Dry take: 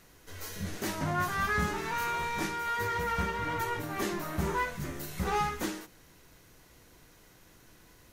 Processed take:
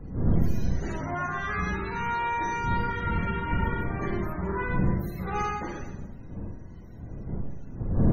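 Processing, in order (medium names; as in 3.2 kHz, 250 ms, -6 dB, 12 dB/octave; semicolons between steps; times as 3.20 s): wind noise 140 Hz -30 dBFS; Schroeder reverb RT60 0.98 s, combs from 33 ms, DRR -1.5 dB; loudest bins only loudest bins 64; trim -3 dB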